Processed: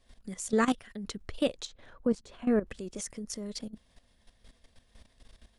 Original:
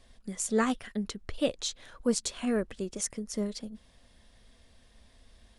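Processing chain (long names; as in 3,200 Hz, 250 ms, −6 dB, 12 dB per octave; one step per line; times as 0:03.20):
0:01.65–0:02.67: low-pass filter 1,100 Hz 6 dB per octave
output level in coarse steps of 14 dB
level +4.5 dB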